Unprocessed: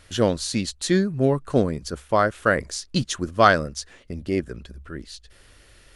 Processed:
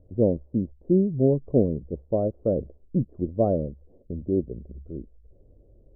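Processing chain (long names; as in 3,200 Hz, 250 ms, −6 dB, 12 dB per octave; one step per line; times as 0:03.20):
Butterworth low-pass 590 Hz 36 dB per octave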